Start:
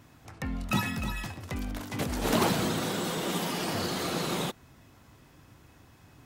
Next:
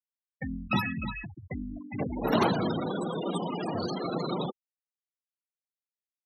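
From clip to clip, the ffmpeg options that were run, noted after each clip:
-af "highpass=f=120:p=1,afftfilt=real='re*gte(hypot(re,im),0.0447)':imag='im*gte(hypot(re,im),0.0447)':win_size=1024:overlap=0.75,volume=2dB"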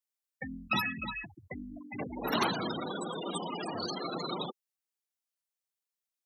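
-filter_complex "[0:a]bass=f=250:g=-11,treble=f=4k:g=5,acrossover=split=350|860[a][b][c];[b]acompressor=threshold=-45dB:ratio=6[d];[a][d][c]amix=inputs=3:normalize=0"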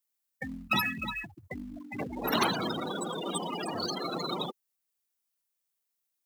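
-filter_complex "[0:a]highshelf=f=8.9k:g=8.5,asplit=2[a][b];[b]acrusher=bits=2:mode=log:mix=0:aa=0.000001,volume=-11.5dB[c];[a][c]amix=inputs=2:normalize=0"

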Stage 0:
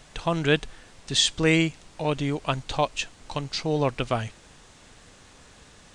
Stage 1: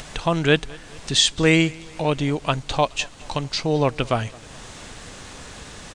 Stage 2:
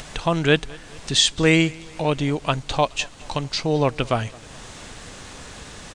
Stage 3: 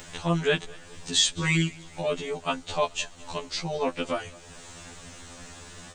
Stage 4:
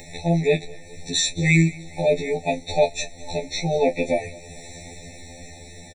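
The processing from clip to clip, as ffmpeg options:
-filter_complex "[0:a]asplit=2[a][b];[b]acompressor=mode=upward:threshold=-25dB:ratio=2.5,volume=-2dB[c];[a][c]amix=inputs=2:normalize=0,aecho=1:1:213|426|639:0.0631|0.0341|0.0184,volume=-1dB"
-af anull
-af "aexciter=amount=1.3:drive=3:freq=6.7k,afftfilt=real='re*2*eq(mod(b,4),0)':imag='im*2*eq(mod(b,4),0)':win_size=2048:overlap=0.75,volume=-3.5dB"
-filter_complex "[0:a]asplit=2[a][b];[b]adelay=25,volume=-10dB[c];[a][c]amix=inputs=2:normalize=0,dynaudnorm=f=270:g=11:m=3dB,afftfilt=real='re*eq(mod(floor(b*sr/1024/880),2),0)':imag='im*eq(mod(floor(b*sr/1024/880),2),0)':win_size=1024:overlap=0.75,volume=4.5dB"

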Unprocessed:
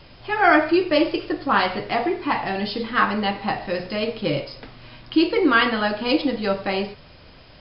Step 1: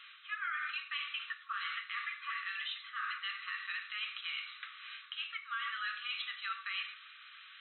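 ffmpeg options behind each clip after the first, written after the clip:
-af "afftfilt=real='re*between(b*sr/4096,1100,4100)':imag='im*between(b*sr/4096,1100,4100)':win_size=4096:overlap=0.75,areverse,acompressor=threshold=-33dB:ratio=6,areverse,alimiter=level_in=4.5dB:limit=-24dB:level=0:latency=1:release=146,volume=-4.5dB"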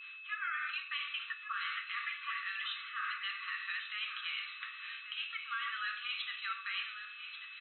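-af "agate=range=-33dB:threshold=-52dB:ratio=3:detection=peak,aeval=exprs='val(0)+0.00447*sin(2*PI*2600*n/s)':c=same,aecho=1:1:1139:0.299"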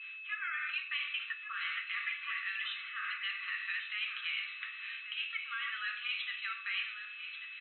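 -af "bandpass=f=2.3k:t=q:w=1.8:csg=0,volume=4dB"

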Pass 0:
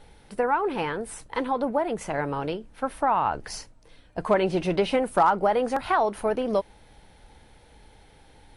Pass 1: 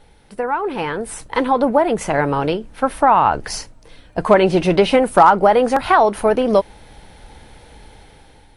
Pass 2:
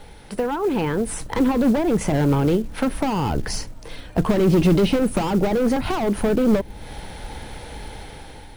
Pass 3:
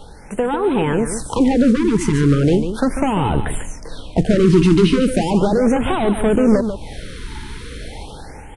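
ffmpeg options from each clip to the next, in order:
-af "dynaudnorm=f=400:g=5:m=10dB,volume=1.5dB"
-filter_complex "[0:a]asoftclip=type=hard:threshold=-17dB,acrossover=split=350[a][b];[b]acompressor=threshold=-36dB:ratio=4[c];[a][c]amix=inputs=2:normalize=0,acrusher=bits=7:mode=log:mix=0:aa=0.000001,volume=7.5dB"
-af "aresample=22050,aresample=44100,aecho=1:1:145:0.355,afftfilt=real='re*(1-between(b*sr/1024,600*pow(5800/600,0.5+0.5*sin(2*PI*0.37*pts/sr))/1.41,600*pow(5800/600,0.5+0.5*sin(2*PI*0.37*pts/sr))*1.41))':imag='im*(1-between(b*sr/1024,600*pow(5800/600,0.5+0.5*sin(2*PI*0.37*pts/sr))/1.41,600*pow(5800/600,0.5+0.5*sin(2*PI*0.37*pts/sr))*1.41))':win_size=1024:overlap=0.75,volume=4dB"

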